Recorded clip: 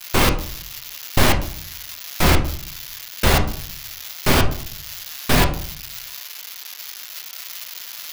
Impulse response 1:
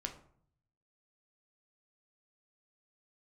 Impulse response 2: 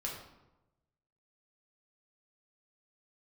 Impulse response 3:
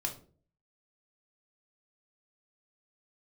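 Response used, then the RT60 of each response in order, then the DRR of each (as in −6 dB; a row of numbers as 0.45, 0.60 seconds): 1; 0.60, 1.0, 0.45 seconds; 3.5, −2.5, 1.0 decibels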